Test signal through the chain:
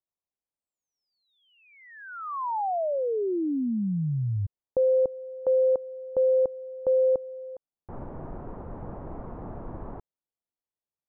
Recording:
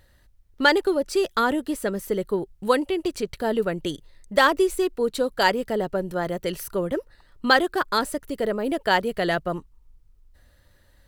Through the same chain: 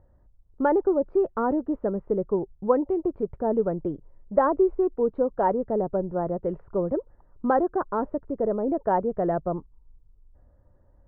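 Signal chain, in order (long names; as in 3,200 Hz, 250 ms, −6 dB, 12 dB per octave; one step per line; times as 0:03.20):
low-pass filter 1,000 Hz 24 dB per octave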